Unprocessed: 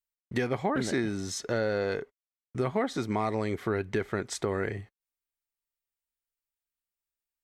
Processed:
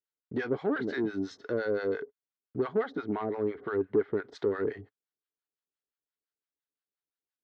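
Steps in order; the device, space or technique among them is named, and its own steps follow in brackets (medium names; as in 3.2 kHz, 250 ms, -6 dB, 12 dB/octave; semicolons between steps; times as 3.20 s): 2.95–4.28 s: low-pass 2.7 kHz 12 dB/octave; guitar amplifier with harmonic tremolo (harmonic tremolo 5.8 Hz, depth 100%, crossover 700 Hz; saturation -26.5 dBFS, distortion -15 dB; cabinet simulation 86–4400 Hz, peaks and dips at 110 Hz -4 dB, 290 Hz +9 dB, 430 Hz +10 dB, 1.5 kHz +5 dB, 2.4 kHz -6 dB)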